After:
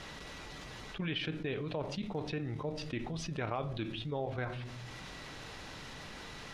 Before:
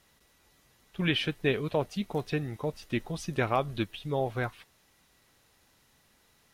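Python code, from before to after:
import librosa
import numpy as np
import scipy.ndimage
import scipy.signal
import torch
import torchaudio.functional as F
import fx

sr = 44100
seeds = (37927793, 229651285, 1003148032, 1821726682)

y = scipy.signal.sosfilt(scipy.signal.butter(2, 4800.0, 'lowpass', fs=sr, output='sos'), x)
y = fx.level_steps(y, sr, step_db=10)
y = fx.room_shoebox(y, sr, seeds[0], volume_m3=490.0, walls='furnished', distance_m=0.46)
y = fx.env_flatten(y, sr, amount_pct=70)
y = y * 10.0 ** (-6.5 / 20.0)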